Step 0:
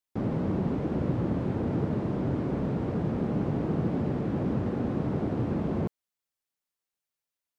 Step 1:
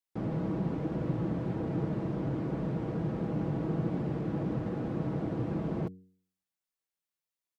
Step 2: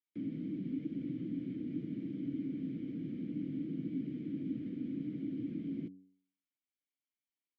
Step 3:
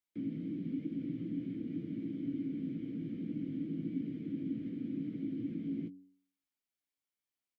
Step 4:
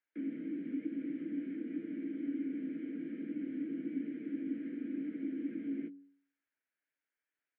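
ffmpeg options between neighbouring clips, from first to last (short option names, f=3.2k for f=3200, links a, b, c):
-af "aecho=1:1:6.2:0.42,bandreject=f=93.32:t=h:w=4,bandreject=f=186.64:t=h:w=4,bandreject=f=279.96:t=h:w=4,bandreject=f=373.28:t=h:w=4,bandreject=f=466.6:t=h:w=4,volume=-4.5dB"
-filter_complex "[0:a]acrossover=split=310|3000[a][b][c];[b]acompressor=threshold=-46dB:ratio=6[d];[a][d][c]amix=inputs=3:normalize=0,asplit=3[e][f][g];[e]bandpass=f=270:t=q:w=8,volume=0dB[h];[f]bandpass=f=2.29k:t=q:w=8,volume=-6dB[i];[g]bandpass=f=3.01k:t=q:w=8,volume=-9dB[j];[h][i][j]amix=inputs=3:normalize=0,volume=6.5dB"
-filter_complex "[0:a]asplit=2[a][b];[b]adelay=18,volume=-9dB[c];[a][c]amix=inputs=2:normalize=0"
-af "highpass=f=310:w=0.5412,highpass=f=310:w=1.3066,equalizer=f=380:t=q:w=4:g=-6,equalizer=f=540:t=q:w=4:g=-4,equalizer=f=770:t=q:w=4:g=-8,equalizer=f=1.1k:t=q:w=4:g=-10,equalizer=f=1.6k:t=q:w=4:g=8,lowpass=f=2.3k:w=0.5412,lowpass=f=2.3k:w=1.3066,volume=7dB"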